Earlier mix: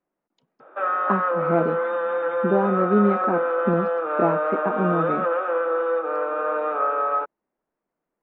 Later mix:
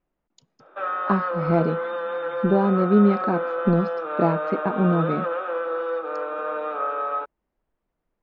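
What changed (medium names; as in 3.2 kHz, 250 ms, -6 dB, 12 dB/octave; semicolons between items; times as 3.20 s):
background -4.0 dB; master: remove three-band isolator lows -20 dB, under 170 Hz, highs -24 dB, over 2.8 kHz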